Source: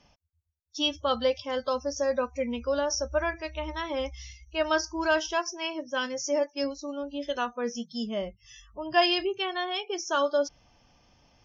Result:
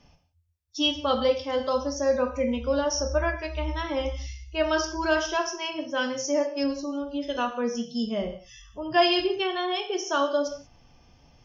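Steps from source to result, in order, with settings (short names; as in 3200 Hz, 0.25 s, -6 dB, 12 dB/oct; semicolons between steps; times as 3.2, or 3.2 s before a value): low shelf 330 Hz +6.5 dB; non-linear reverb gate 0.21 s falling, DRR 4.5 dB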